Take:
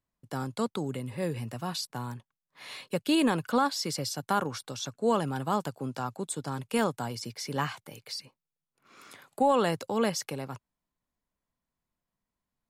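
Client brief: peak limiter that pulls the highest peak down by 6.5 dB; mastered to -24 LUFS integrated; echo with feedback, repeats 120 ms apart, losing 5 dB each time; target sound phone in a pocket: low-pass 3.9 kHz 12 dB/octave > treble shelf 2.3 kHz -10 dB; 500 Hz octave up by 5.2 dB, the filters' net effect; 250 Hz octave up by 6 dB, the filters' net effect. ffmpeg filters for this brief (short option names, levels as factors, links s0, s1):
-af "equalizer=f=250:t=o:g=6,equalizer=f=500:t=o:g=5,alimiter=limit=0.168:level=0:latency=1,lowpass=3900,highshelf=f=2300:g=-10,aecho=1:1:120|240|360|480|600|720|840:0.562|0.315|0.176|0.0988|0.0553|0.031|0.0173,volume=1.58"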